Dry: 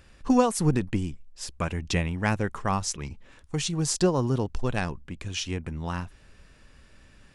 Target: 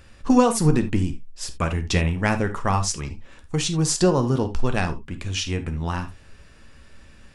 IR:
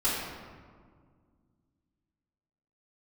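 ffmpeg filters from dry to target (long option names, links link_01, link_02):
-filter_complex "[0:a]asplit=2[link_01][link_02];[1:a]atrim=start_sample=2205,atrim=end_sample=3528,adelay=9[link_03];[link_02][link_03]afir=irnorm=-1:irlink=0,volume=-15.5dB[link_04];[link_01][link_04]amix=inputs=2:normalize=0,volume=4dB"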